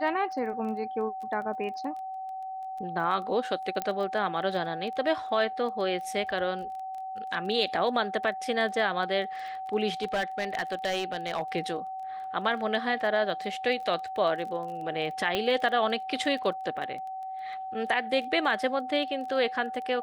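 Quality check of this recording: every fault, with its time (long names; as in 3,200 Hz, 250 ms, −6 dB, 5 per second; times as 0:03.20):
surface crackle 16 per second −37 dBFS
whistle 760 Hz −34 dBFS
0:03.82: click −16 dBFS
0:10.00–0:11.42: clipping −24 dBFS
0:15.35: click −14 dBFS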